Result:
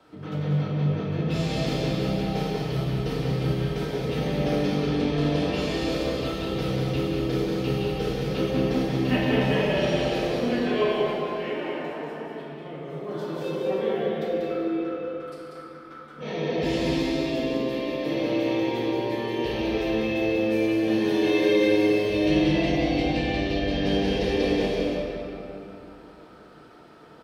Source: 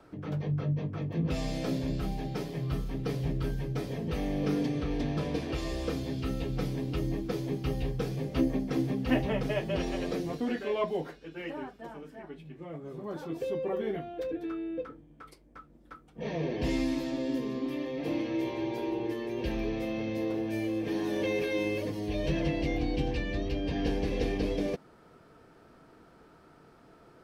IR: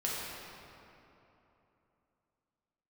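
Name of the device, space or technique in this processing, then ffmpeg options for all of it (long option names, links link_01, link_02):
stadium PA: -filter_complex "[0:a]highpass=frequency=130:poles=1,equalizer=frequency=3500:width_type=o:width=0.96:gain=6,aecho=1:1:189.5|221.6:0.562|0.282[link_01];[1:a]atrim=start_sample=2205[link_02];[link_01][link_02]afir=irnorm=-1:irlink=0"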